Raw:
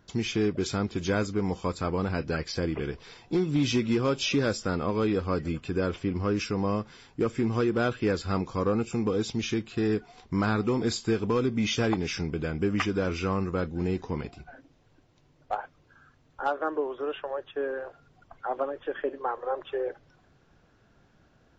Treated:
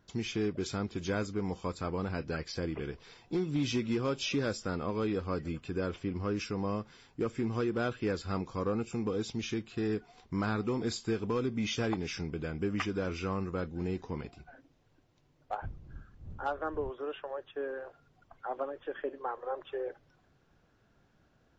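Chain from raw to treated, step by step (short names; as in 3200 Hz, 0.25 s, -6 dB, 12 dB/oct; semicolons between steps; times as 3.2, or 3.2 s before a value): 15.62–16.89 wind noise 86 Hz -33 dBFS; gain -6 dB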